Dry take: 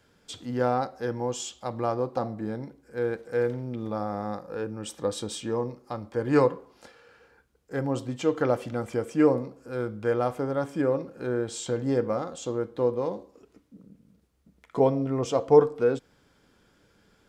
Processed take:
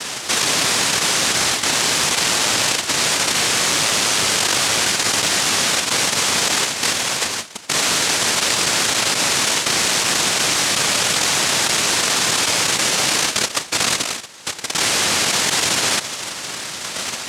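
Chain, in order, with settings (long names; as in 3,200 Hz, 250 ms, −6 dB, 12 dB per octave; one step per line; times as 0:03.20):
phase shifter 0.47 Hz, delay 5 ms, feedback 38%
cochlear-implant simulation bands 1
envelope flattener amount 100%
level −5 dB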